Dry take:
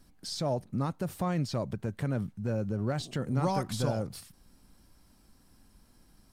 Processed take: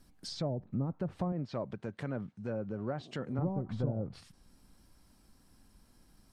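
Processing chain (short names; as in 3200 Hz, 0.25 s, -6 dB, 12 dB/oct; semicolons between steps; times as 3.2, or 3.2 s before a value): 1.32–3.39 HPF 250 Hz 6 dB/oct; treble ducked by the level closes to 410 Hz, closed at -25.5 dBFS; gain -2 dB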